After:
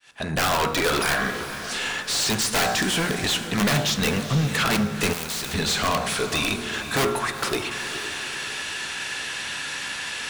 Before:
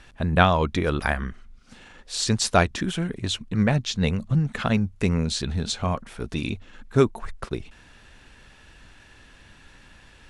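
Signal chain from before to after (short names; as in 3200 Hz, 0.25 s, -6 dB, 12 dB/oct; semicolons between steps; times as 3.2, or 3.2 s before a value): opening faded in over 0.81 s; HPF 47 Hz 12 dB/oct; pre-emphasis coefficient 0.8; de-hum 59.53 Hz, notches 28; in parallel at +2 dB: compressor 6:1, threshold -48 dBFS, peak gain reduction 22 dB; on the sum: overdrive pedal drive 32 dB, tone 3700 Hz, clips at -14.5 dBFS; wrapped overs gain 19 dB; diffused feedback echo 0.458 s, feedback 46%, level -11 dB; on a send at -10 dB: reverb RT60 1.3 s, pre-delay 3 ms; 5.13–5.54 on the sum: spectral compressor 2:1; gain +1 dB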